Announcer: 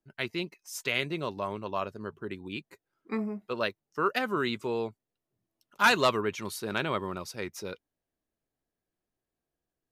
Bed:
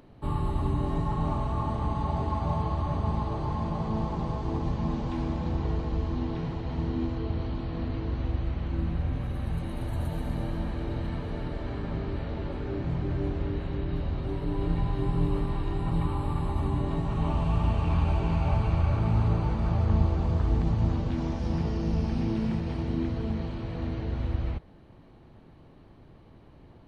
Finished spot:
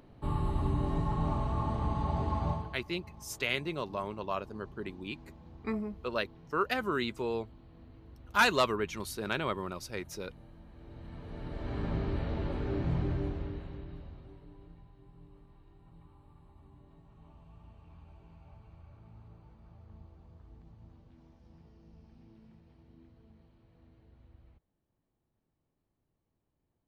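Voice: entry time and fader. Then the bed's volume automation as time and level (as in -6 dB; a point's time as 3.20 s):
2.55 s, -2.5 dB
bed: 2.49 s -3 dB
2.84 s -22.5 dB
10.66 s -22.5 dB
11.82 s -1 dB
13.00 s -1 dB
14.91 s -29.5 dB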